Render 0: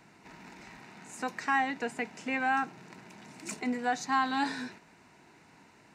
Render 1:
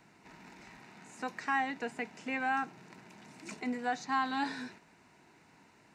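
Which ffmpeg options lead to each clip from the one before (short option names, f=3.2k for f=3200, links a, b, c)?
-filter_complex "[0:a]acrossover=split=6000[a][b];[b]acompressor=threshold=-56dB:ratio=4:attack=1:release=60[c];[a][c]amix=inputs=2:normalize=0,volume=-3.5dB"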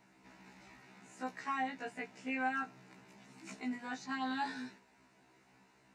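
-af "afftfilt=real='re*1.73*eq(mod(b,3),0)':imag='im*1.73*eq(mod(b,3),0)':win_size=2048:overlap=0.75,volume=-2dB"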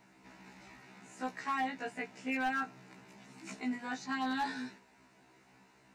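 -af "asoftclip=type=hard:threshold=-31dB,volume=3dB"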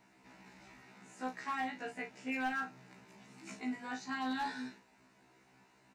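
-filter_complex "[0:a]asplit=2[a][b];[b]adelay=39,volume=-8dB[c];[a][c]amix=inputs=2:normalize=0,volume=-3dB"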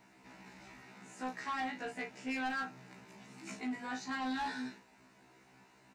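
-af "asoftclip=type=tanh:threshold=-35dB,volume=3dB"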